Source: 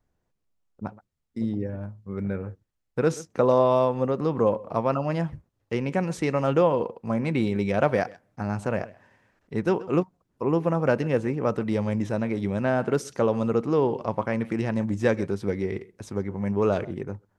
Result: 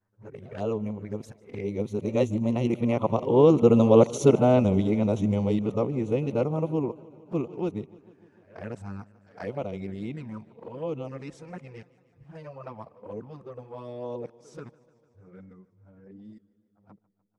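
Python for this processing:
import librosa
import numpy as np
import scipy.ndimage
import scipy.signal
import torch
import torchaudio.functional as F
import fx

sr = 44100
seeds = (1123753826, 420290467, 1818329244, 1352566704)

y = np.flip(x).copy()
y = fx.doppler_pass(y, sr, speed_mps=16, closest_m=13.0, pass_at_s=3.96)
y = fx.env_flanger(y, sr, rest_ms=10.7, full_db=-36.0)
y = fx.echo_warbled(y, sr, ms=149, feedback_pct=71, rate_hz=2.8, cents=90, wet_db=-22.0)
y = F.gain(torch.from_numpy(y), 7.5).numpy()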